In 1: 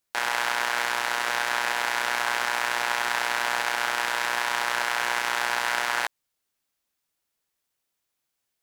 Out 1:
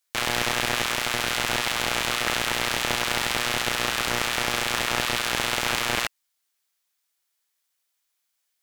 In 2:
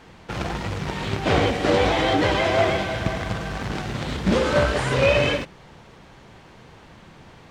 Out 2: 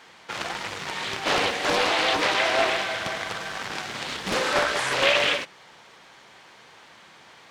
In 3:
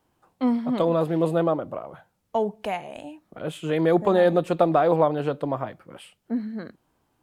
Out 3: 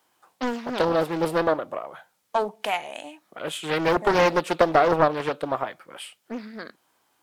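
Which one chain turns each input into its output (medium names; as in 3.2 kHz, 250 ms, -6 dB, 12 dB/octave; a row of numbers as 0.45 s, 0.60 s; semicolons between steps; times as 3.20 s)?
high-pass 1.5 kHz 6 dB/octave; band-stop 2.7 kHz, Q 26; loudspeaker Doppler distortion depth 0.68 ms; normalise loudness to -24 LUFS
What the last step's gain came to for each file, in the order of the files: +4.5 dB, +4.5 dB, +9.0 dB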